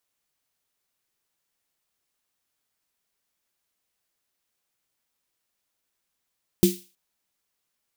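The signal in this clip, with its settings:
synth snare length 0.32 s, tones 190 Hz, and 350 Hz, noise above 2,700 Hz, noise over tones −10.5 dB, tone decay 0.24 s, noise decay 0.38 s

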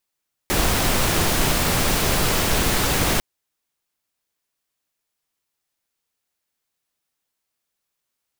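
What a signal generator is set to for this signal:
noise pink, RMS −19.5 dBFS 2.70 s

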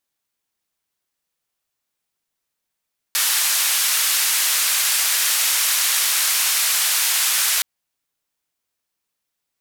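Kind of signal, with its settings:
band-limited noise 1,300–14,000 Hz, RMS −19 dBFS 4.47 s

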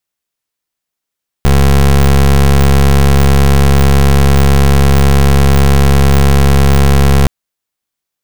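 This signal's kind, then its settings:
pulse wave 69.1 Hz, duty 23% −6.5 dBFS 5.82 s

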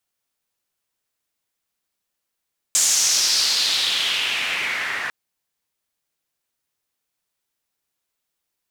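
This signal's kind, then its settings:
filter sweep on noise pink, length 2.35 s bandpass, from 7,300 Hz, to 1,700 Hz, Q 3.3, exponential, gain ramp −10 dB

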